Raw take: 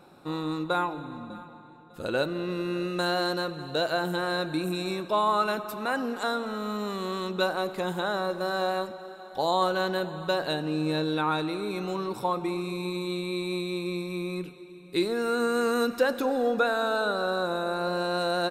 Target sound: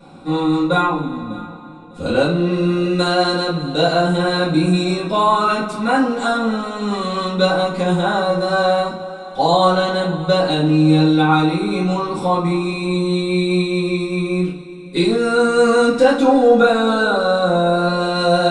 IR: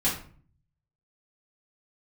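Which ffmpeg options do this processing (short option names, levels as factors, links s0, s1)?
-filter_complex "[0:a]bandreject=f=1700:w=8.5[s0];[1:a]atrim=start_sample=2205,atrim=end_sample=6615[s1];[s0][s1]afir=irnorm=-1:irlink=0,aresample=22050,aresample=44100,volume=1.12"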